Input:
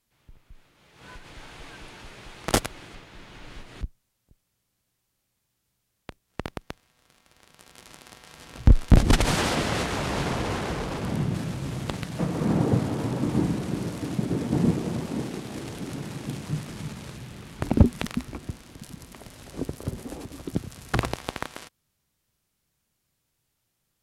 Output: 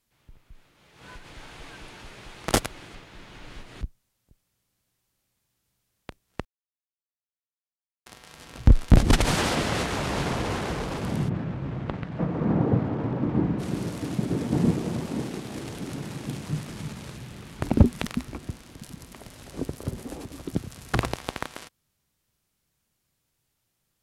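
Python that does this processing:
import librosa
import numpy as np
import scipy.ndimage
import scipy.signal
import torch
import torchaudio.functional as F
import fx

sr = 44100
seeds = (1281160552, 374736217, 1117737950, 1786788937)

y = fx.lowpass(x, sr, hz=1900.0, slope=12, at=(11.28, 13.58), fade=0.02)
y = fx.edit(y, sr, fx.silence(start_s=6.45, length_s=1.61), tone=tone)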